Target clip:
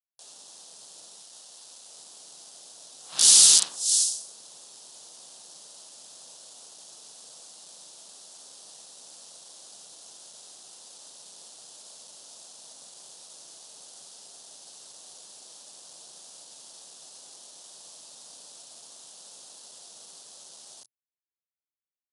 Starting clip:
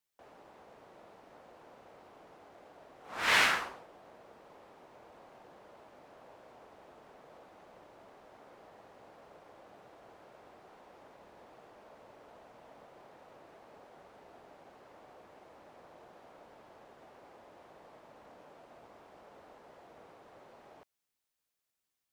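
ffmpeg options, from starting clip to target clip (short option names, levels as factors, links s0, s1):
-filter_complex "[0:a]asettb=1/sr,asplit=3[s0][s1][s2];[s0]atrim=end=1.184[s3];[s1]atrim=start=1.18:end=1.89,asetpts=PTS-STARTPTS,afade=t=in:d=0.004:c=qsin,afade=t=out:st=0.706:d=0.004:c=qsin,lowshelf=f=400:g=-8[s4];[s2]atrim=start=1.886[s5];[s3][s4]acrossfade=d=0.004:c1=hsin:c2=qsin[s6];[s6][s5]acrossfade=d=0.004:c1=qsin:c2=hsin,acrossover=split=370|5600[s7][s8][s9];[s7]adelay=40[s10];[s9]adelay=580[s11];[s10][s8][s11]amix=inputs=3:normalize=0,acrusher=bits=9:mix=0:aa=0.000001,aeval=exprs='0.211*(cos(1*acos(clip(val(0)/0.211,-1,1)))-cos(1*PI/2))+0.0668*(cos(8*acos(clip(val(0)/0.211,-1,1)))-cos(8*PI/2))':c=same,aeval=exprs='(mod(13.3*val(0)+1,2)-1)/13.3':c=same,aexciter=amount=9.6:drive=7.8:freq=3300,afftfilt=real='re*between(b*sr/4096,120,11000)':imag='im*between(b*sr/4096,120,11000)':win_size=4096:overlap=0.75,volume=0.631"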